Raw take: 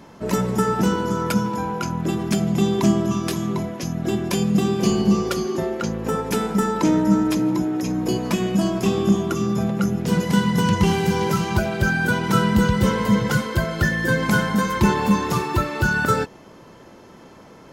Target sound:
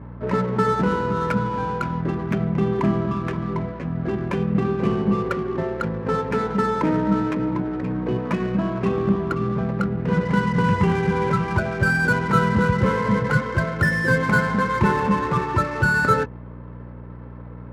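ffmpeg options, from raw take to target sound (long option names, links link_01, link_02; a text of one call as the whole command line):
ffmpeg -i in.wav -af "aeval=exprs='val(0)+0.0224*(sin(2*PI*60*n/s)+sin(2*PI*2*60*n/s)/2+sin(2*PI*3*60*n/s)/3+sin(2*PI*4*60*n/s)/4+sin(2*PI*5*60*n/s)/5)':channel_layout=same,highpass=100,equalizer=frequency=210:width_type=q:width=4:gain=-7,equalizer=frequency=330:width_type=q:width=4:gain=-8,equalizer=frequency=720:width_type=q:width=4:gain=-8,lowpass=frequency=2200:width=0.5412,lowpass=frequency=2200:width=1.3066,adynamicsmooth=sensitivity=7.5:basefreq=1500,volume=3dB" out.wav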